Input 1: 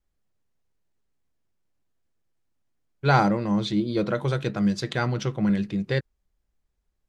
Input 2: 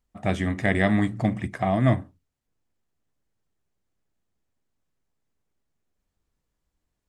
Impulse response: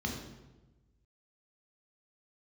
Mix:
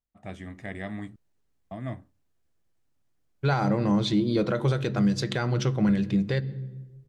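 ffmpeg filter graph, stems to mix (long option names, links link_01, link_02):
-filter_complex "[0:a]adelay=400,volume=2.5dB,asplit=2[link_01][link_02];[link_02]volume=-21dB[link_03];[1:a]volume=-14.5dB,asplit=3[link_04][link_05][link_06];[link_04]atrim=end=1.16,asetpts=PTS-STARTPTS,afade=type=out:start_time=1.156:duration=0.004:curve=hsin[link_07];[link_05]atrim=start=1.16:end=1.71,asetpts=PTS-STARTPTS,volume=0[link_08];[link_06]atrim=start=1.71,asetpts=PTS-STARTPTS,afade=type=in:duration=0.004:curve=hsin[link_09];[link_07][link_08][link_09]concat=n=3:v=0:a=1[link_10];[2:a]atrim=start_sample=2205[link_11];[link_03][link_11]afir=irnorm=-1:irlink=0[link_12];[link_01][link_10][link_12]amix=inputs=3:normalize=0,alimiter=limit=-15dB:level=0:latency=1:release=134"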